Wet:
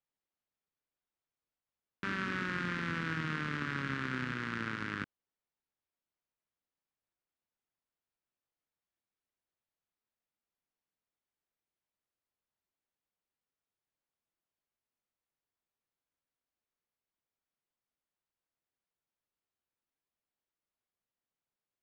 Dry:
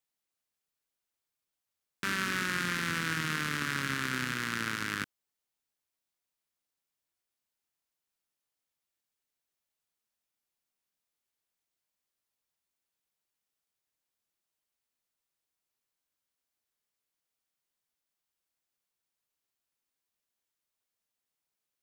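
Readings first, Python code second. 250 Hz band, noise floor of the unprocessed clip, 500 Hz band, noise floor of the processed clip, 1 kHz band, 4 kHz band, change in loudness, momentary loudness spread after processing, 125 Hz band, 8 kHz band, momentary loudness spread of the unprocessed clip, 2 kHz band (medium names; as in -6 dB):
-0.5 dB, under -85 dBFS, -1.0 dB, under -85 dBFS, -3.5 dB, -9.5 dB, -4.5 dB, 4 LU, -0.5 dB, -18.5 dB, 4 LU, -4.5 dB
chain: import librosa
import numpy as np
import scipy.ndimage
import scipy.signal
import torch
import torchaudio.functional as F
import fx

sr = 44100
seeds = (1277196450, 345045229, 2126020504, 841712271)

y = fx.spacing_loss(x, sr, db_at_10k=27)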